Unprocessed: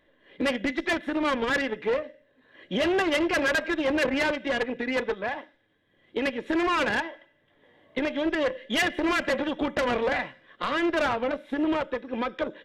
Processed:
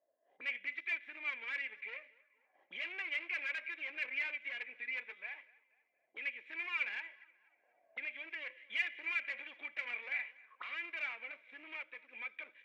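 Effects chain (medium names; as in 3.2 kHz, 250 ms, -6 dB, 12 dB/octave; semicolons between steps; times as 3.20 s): waveshaping leveller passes 1; auto-wah 650–2300 Hz, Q 13, up, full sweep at -29.5 dBFS; tape echo 241 ms, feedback 52%, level -21 dB, low-pass 2.7 kHz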